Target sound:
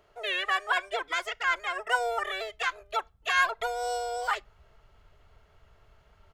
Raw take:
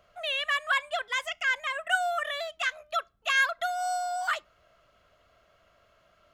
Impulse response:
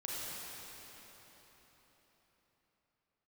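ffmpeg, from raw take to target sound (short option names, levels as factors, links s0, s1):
-filter_complex "[0:a]asubboost=boost=6.5:cutoff=140,asplit=2[s0][s1];[s1]asetrate=29433,aresample=44100,atempo=1.49831,volume=0.794[s2];[s0][s2]amix=inputs=2:normalize=0,volume=0.794"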